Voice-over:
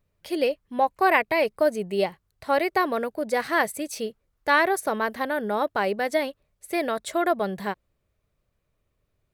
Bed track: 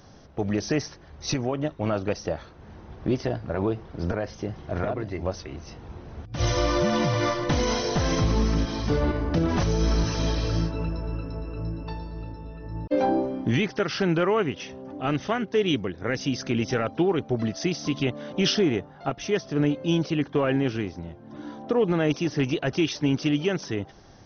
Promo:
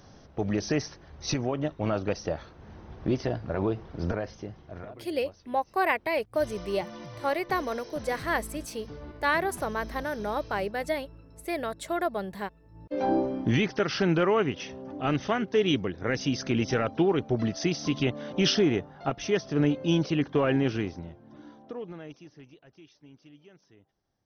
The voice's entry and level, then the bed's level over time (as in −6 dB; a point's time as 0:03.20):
4.75 s, −5.5 dB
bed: 0:04.13 −2 dB
0:05.11 −19 dB
0:12.71 −19 dB
0:13.12 −1 dB
0:20.88 −1 dB
0:22.65 −29.5 dB